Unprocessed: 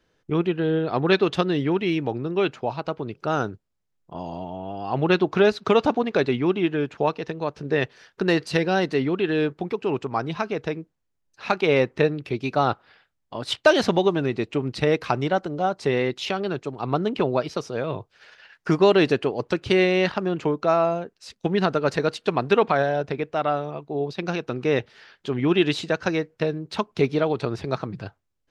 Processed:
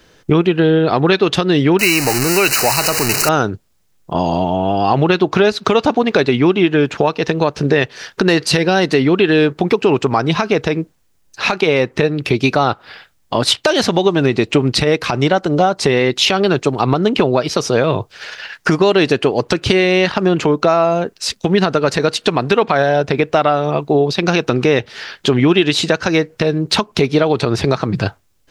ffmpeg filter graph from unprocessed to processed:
ffmpeg -i in.wav -filter_complex "[0:a]asettb=1/sr,asplit=3[link_01][link_02][link_03];[link_01]atrim=end=1.794[link_04];[link_02]atrim=start=1.79:end=3.29,asetpts=PTS-STARTPTS,afade=type=in:duration=0.004:curve=qsin,afade=type=out:start_time=1.496:duration=0.004:curve=qsin,aeval=exprs='val(0)+0.5*0.0447*sgn(val(0))':channel_layout=same,asuperstop=centerf=3400:order=12:qfactor=3.6,tiltshelf=frequency=1300:gain=-7.5[link_05];[link_03]atrim=start=3.286[link_06];[link_04][link_05]acrossfade=duration=0.004:curve1=hsin:curve2=qsin[link_07];[link_07][link_06]acrossfade=duration=0.004:curve1=qsin:curve2=hsin,highshelf=frequency=3500:gain=6.5,acompressor=threshold=-27dB:ratio=6,alimiter=level_in=18.5dB:limit=-1dB:release=50:level=0:latency=1,volume=-1dB" out.wav

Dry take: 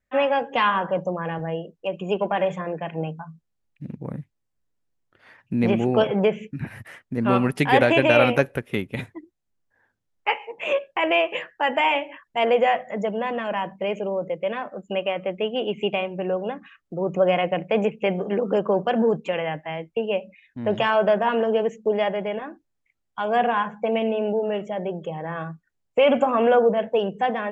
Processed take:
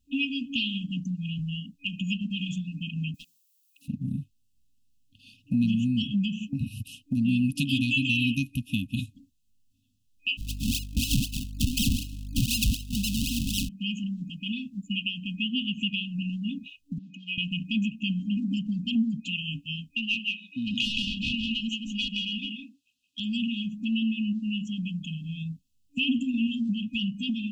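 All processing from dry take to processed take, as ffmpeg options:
ffmpeg -i in.wav -filter_complex "[0:a]asettb=1/sr,asplit=3[link_01][link_02][link_03];[link_01]atrim=end=3.144[link_04];[link_02]atrim=start=3.14:end=3.88,asetpts=PTS-STARTPTS,afade=type=in:duration=0.004:curve=qsin,afade=type=out:start_time=0.736:duration=0.004:curve=qsin,highpass=frequency=570:width=0.5412,highpass=frequency=570:width=1.3066,aemphasis=mode=production:type=75fm,volume=36dB,asoftclip=hard,volume=-36dB[link_05];[link_03]atrim=start=3.876[link_06];[link_04][link_05]acrossfade=duration=0.004:curve1=hsin:curve2=qsin[link_07];[link_07][link_06]acrossfade=duration=0.004:curve1=qsin:curve2=hsin,asettb=1/sr,asplit=3[link_08][link_09][link_10];[link_08]atrim=end=10.374[link_11];[link_09]atrim=start=10.37:end=13.69,asetpts=PTS-STARTPTS,afade=type=in:duration=0.004:curve=qsin,afade=type=out:start_time=3.316:duration=0.004:curve=qsin,aeval=exprs='val(0)+0.0158*(sin(2*PI*50*n/s)+sin(2*PI*2*50*n/s)/2+sin(2*PI*3*50*n/s)/3+sin(2*PI*4*50*n/s)/4+sin(2*PI*5*50*n/s)/5)':channel_layout=same,agate=range=-33dB:threshold=-32dB:ratio=3:release=100:detection=peak,acrusher=samples=37:mix=1:aa=0.000001:lfo=1:lforange=37:lforate=4[link_12];[link_10]atrim=start=13.686[link_13];[link_11][link_12]acrossfade=duration=0.004:curve1=hsin:curve2=qsin[link_14];[link_14][link_13]acrossfade=duration=0.004:curve1=qsin:curve2=hsin,asettb=1/sr,asplit=3[link_15][link_16][link_17];[link_15]atrim=end=16.984[link_18];[link_16]atrim=start=16.98:end=17.38,asetpts=PTS-STARTPTS,afade=type=in:duration=0.004:curve=qsin,afade=type=out:start_time=0.396:duration=0.004:curve=qsin,highpass=570,lowpass=3400,acrossover=split=2500[link_19][link_20];[link_20]acompressor=threshold=-45dB:ratio=4:attack=1:release=60[link_21];[link_19][link_21]amix=inputs=2:normalize=0[link_22];[link_17]atrim=start=17.376[link_23];[link_18][link_22]acrossfade=duration=0.004:curve1=hsin:curve2=qsin[link_24];[link_24][link_23]acrossfade=duration=0.004:curve1=qsin:curve2=hsin,asettb=1/sr,asplit=3[link_25][link_26][link_27];[link_25]atrim=end=19.954[link_28];[link_26]atrim=start=19.95:end=23.2,asetpts=PTS-STARTPTS,afade=type=in:duration=0.004:curve=qsin,afade=type=out:start_time=3.246:duration=0.004:curve=qsin,highpass=frequency=390:poles=1,aecho=1:1:169:0.668,atrim=end_sample=143325,asplit=2[link_29][link_30];[link_30]highpass=frequency=720:poles=1,volume=15dB,asoftclip=type=tanh:threshold=-7dB[link_31];[link_29][link_31]amix=inputs=2:normalize=0,lowpass=frequency=2100:poles=1,volume=-6dB[link_32];[link_27]atrim=start=23.196[link_33];[link_28][link_32]acrossfade=duration=0.004:curve1=hsin:curve2=qsin[link_34];[link_34][link_33]acrossfade=duration=0.004:curve1=qsin:curve2=hsin,afftfilt=real='re*(1-between(b*sr/4096,280,2500))':imag='im*(1-between(b*sr/4096,280,2500))':win_size=4096:overlap=0.75,equalizer=frequency=160:width_type=o:width=0.4:gain=-7.5,acompressor=threshold=-38dB:ratio=2,volume=9dB" out.wav

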